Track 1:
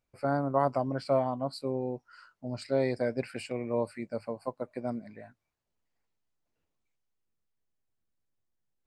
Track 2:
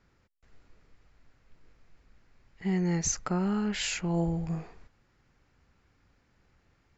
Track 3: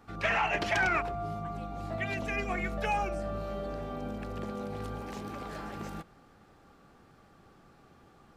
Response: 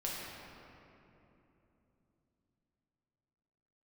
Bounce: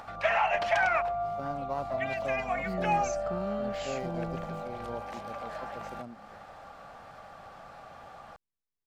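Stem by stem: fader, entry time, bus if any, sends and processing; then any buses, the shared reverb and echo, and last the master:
−10.0 dB, 1.15 s, no send, running median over 15 samples; high-shelf EQ 3,700 Hz +11 dB
−8.5 dB, 0.00 s, no send, no processing
0.0 dB, 0.00 s, no send, low shelf with overshoot 480 Hz −8.5 dB, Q 3; upward compression, threshold −36 dBFS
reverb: not used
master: high-shelf EQ 5,800 Hz −8.5 dB

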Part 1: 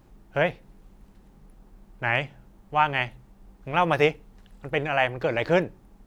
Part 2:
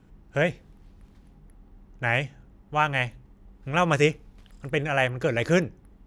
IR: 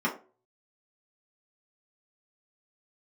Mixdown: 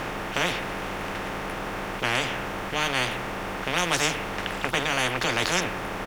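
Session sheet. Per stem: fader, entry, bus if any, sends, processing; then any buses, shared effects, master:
−4.0 dB, 0.00 s, no send, compressor on every frequency bin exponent 0.6
−7.5 dB, 11 ms, no send, parametric band 250 Hz +12.5 dB 1.7 octaves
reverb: not used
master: every bin compressed towards the loudest bin 4 to 1

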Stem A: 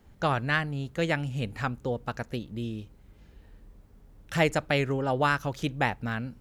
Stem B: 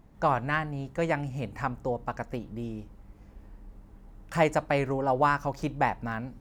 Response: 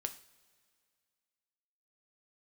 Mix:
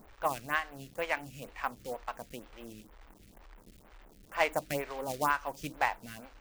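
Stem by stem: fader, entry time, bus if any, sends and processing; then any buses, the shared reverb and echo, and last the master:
+2.5 dB, 0.00 s, no send, brickwall limiter −20.5 dBFS, peak gain reduction 10.5 dB; automatic ducking −9 dB, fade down 0.50 s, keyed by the second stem
−3.0 dB, 0.00 s, polarity flipped, no send, parametric band 3,100 Hz +9.5 dB 1.8 octaves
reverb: not used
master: parametric band 5,300 Hz −5.5 dB 1.6 octaves; log-companded quantiser 4 bits; phaser with staggered stages 2.1 Hz

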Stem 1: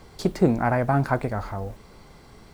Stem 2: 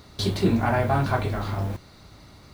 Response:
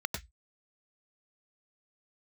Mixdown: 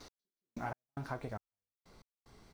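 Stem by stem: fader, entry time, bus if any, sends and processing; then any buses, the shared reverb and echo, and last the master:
−12.0 dB, 0.00 s, no send, downward compressor, threshold −24 dBFS, peak gain reduction 11 dB
−4.0 dB, 4.6 ms, polarity flipped, no send, Butterworth high-pass 230 Hz 48 dB per octave; parametric band 5,800 Hz +10 dB 0.5 octaves; downward compressor 2 to 1, threshold −30 dBFS, peak gain reduction 6.5 dB; automatic ducking −17 dB, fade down 1.20 s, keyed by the first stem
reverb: not used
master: gate pattern "x......xx...xxxx" 186 BPM −60 dB

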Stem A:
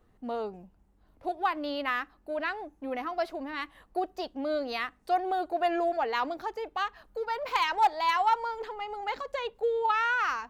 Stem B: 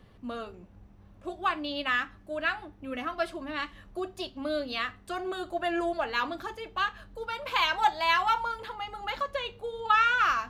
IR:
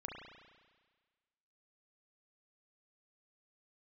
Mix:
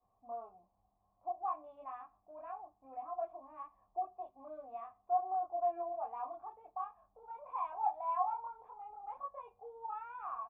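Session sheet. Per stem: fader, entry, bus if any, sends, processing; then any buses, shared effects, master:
−4.5 dB, 0.00 s, no send, no processing
−4.0 dB, 21 ms, no send, no processing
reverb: not used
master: formant resonators in series a; low-shelf EQ 190 Hz +4.5 dB

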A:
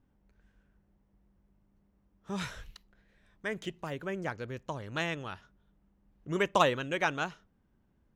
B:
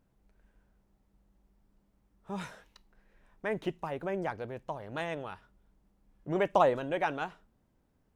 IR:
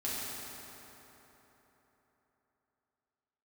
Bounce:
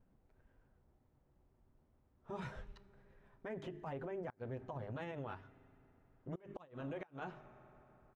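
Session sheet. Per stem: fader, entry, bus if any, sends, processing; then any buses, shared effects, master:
−5.5 dB, 0.00 s, send −21 dB, low-shelf EQ 330 Hz +6 dB; mains-hum notches 50/100/150/200/250/300/350 Hz; tremolo along a rectified sine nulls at 7.7 Hz
−0.5 dB, 8.3 ms, no send, mains-hum notches 50/100/150/200/250/300/350/400 Hz; downward compressor, threshold −35 dBFS, peak gain reduction 15 dB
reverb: on, RT60 3.9 s, pre-delay 4 ms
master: gate with flip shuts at −24 dBFS, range −29 dB; low-pass filter 1,400 Hz 6 dB per octave; brickwall limiter −35.5 dBFS, peak gain reduction 10.5 dB

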